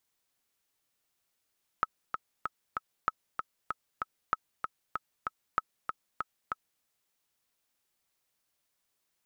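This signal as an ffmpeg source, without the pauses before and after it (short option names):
-f lavfi -i "aevalsrc='pow(10,(-13-6*gte(mod(t,4*60/192),60/192))/20)*sin(2*PI*1290*mod(t,60/192))*exp(-6.91*mod(t,60/192)/0.03)':d=5:s=44100"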